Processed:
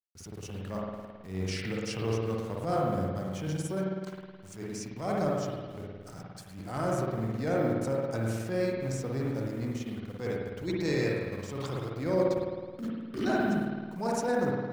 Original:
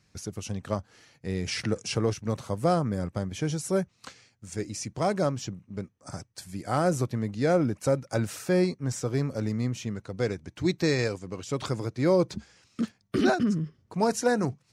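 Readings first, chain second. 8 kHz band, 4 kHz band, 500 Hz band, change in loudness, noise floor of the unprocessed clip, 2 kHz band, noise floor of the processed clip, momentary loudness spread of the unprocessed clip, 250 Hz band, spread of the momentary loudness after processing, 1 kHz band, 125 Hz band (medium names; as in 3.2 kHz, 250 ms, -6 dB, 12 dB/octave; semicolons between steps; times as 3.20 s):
-7.5 dB, -6.0 dB, -3.0 dB, -3.5 dB, -68 dBFS, -3.0 dB, -48 dBFS, 14 LU, -3.5 dB, 13 LU, -3.0 dB, -4.0 dB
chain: send-on-delta sampling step -46.5 dBFS; spring tank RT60 1.6 s, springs 53 ms, chirp 60 ms, DRR -2.5 dB; transient shaper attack -10 dB, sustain -6 dB; trim -6 dB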